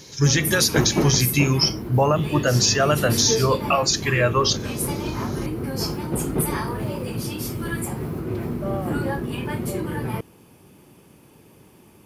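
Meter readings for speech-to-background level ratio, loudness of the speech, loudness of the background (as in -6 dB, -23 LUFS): 7.0 dB, -20.0 LUFS, -27.0 LUFS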